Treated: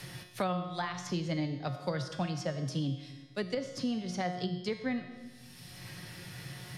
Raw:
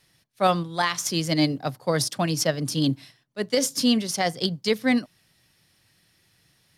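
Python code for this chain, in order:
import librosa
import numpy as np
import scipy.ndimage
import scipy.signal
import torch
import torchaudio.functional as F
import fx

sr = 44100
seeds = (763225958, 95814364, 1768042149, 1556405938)

y = fx.env_lowpass_down(x, sr, base_hz=2100.0, full_db=-18.0)
y = fx.peak_eq(y, sr, hz=130.0, db=11.5, octaves=0.36)
y = fx.comb_fb(y, sr, f0_hz=180.0, decay_s=0.67, harmonics='all', damping=0.0, mix_pct=80)
y = fx.rev_freeverb(y, sr, rt60_s=0.83, hf_ratio=0.75, predelay_ms=35, drr_db=13.5)
y = fx.band_squash(y, sr, depth_pct=100)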